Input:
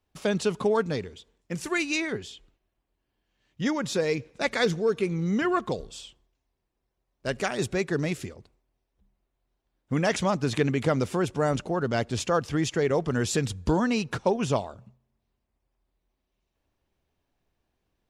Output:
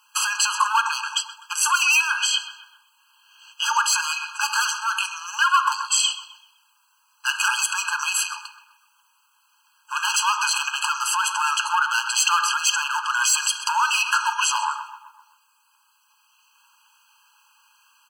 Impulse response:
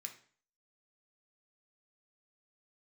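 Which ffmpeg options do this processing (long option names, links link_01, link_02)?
-filter_complex "[0:a]highpass=200,equalizer=frequency=360:width=1.3:gain=-6,asplit=2[link_01][link_02];[link_02]acompressor=threshold=-34dB:ratio=6,volume=1.5dB[link_03];[link_01][link_03]amix=inputs=2:normalize=0,volume=23.5dB,asoftclip=hard,volume=-23.5dB,asplit=2[link_04][link_05];[link_05]adelay=128,lowpass=frequency=2900:poles=1,volume=-14.5dB,asplit=2[link_06][link_07];[link_07]adelay=128,lowpass=frequency=2900:poles=1,volume=0.55,asplit=2[link_08][link_09];[link_09]adelay=128,lowpass=frequency=2900:poles=1,volume=0.55,asplit=2[link_10][link_11];[link_11]adelay=128,lowpass=frequency=2900:poles=1,volume=0.55,asplit=2[link_12][link_13];[link_13]adelay=128,lowpass=frequency=2900:poles=1,volume=0.55[link_14];[link_04][link_06][link_08][link_10][link_12][link_14]amix=inputs=6:normalize=0,asplit=2[link_15][link_16];[1:a]atrim=start_sample=2205[link_17];[link_16][link_17]afir=irnorm=-1:irlink=0,volume=3.5dB[link_18];[link_15][link_18]amix=inputs=2:normalize=0,alimiter=level_in=23dB:limit=-1dB:release=50:level=0:latency=1,afftfilt=real='re*eq(mod(floor(b*sr/1024/820),2),1)':imag='im*eq(mod(floor(b*sr/1024/820),2),1)':win_size=1024:overlap=0.75,volume=-6dB"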